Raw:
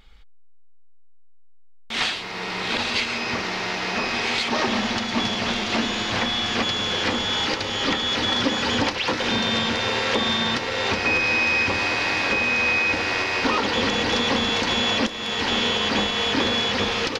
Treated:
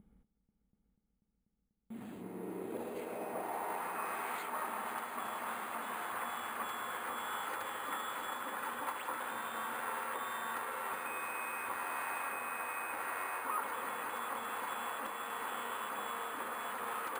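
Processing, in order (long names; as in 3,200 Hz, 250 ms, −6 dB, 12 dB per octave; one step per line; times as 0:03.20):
high-shelf EQ 2,400 Hz −10.5 dB
reversed playback
downward compressor 5 to 1, threshold −35 dBFS, peak gain reduction 15.5 dB
reversed playback
band-pass filter sweep 200 Hz → 1,200 Hz, 0:02.02–0:03.99
bad sample-rate conversion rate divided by 4×, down filtered, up hold
on a send: echo machine with several playback heads 244 ms, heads all three, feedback 75%, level −15 dB
on the sum: level +4.5 dB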